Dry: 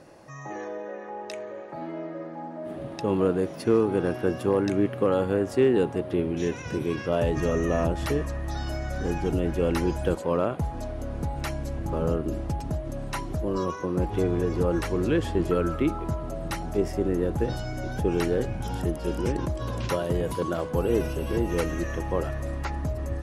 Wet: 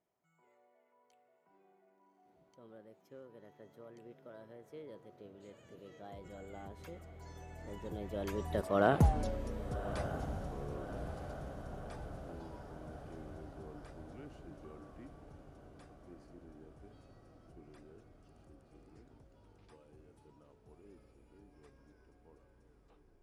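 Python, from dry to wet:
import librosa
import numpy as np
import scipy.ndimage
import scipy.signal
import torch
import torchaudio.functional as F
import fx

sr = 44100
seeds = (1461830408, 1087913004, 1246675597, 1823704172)

y = fx.tape_stop_end(x, sr, length_s=0.77)
y = fx.doppler_pass(y, sr, speed_mps=52, closest_m=6.9, pass_at_s=9.03)
y = fx.echo_diffused(y, sr, ms=1188, feedback_pct=62, wet_db=-10.5)
y = F.gain(torch.from_numpy(y), 2.5).numpy()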